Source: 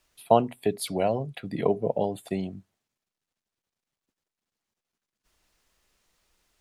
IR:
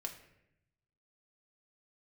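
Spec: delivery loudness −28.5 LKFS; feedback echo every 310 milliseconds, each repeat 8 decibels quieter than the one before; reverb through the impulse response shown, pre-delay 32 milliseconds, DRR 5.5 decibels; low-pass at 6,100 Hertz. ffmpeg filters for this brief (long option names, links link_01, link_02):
-filter_complex "[0:a]lowpass=6100,aecho=1:1:310|620|930|1240|1550:0.398|0.159|0.0637|0.0255|0.0102,asplit=2[link_01][link_02];[1:a]atrim=start_sample=2205,adelay=32[link_03];[link_02][link_03]afir=irnorm=-1:irlink=0,volume=-4dB[link_04];[link_01][link_04]amix=inputs=2:normalize=0,volume=-3dB"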